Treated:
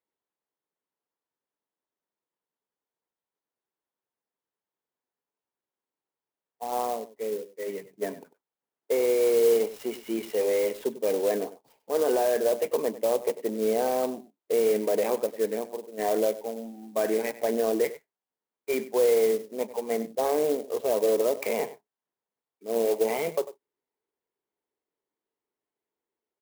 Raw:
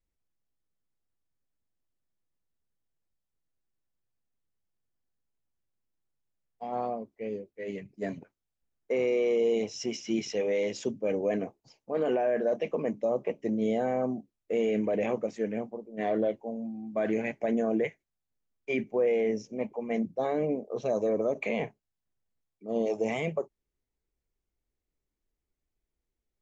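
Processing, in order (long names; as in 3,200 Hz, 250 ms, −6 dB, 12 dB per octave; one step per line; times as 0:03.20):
loudspeaker in its box 320–4,200 Hz, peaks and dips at 430 Hz +5 dB, 940 Hz +7 dB, 2,500 Hz −4 dB
on a send: single-tap delay 97 ms −15.5 dB
on the sum: converter with an unsteady clock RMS 0.046 ms
level +2 dB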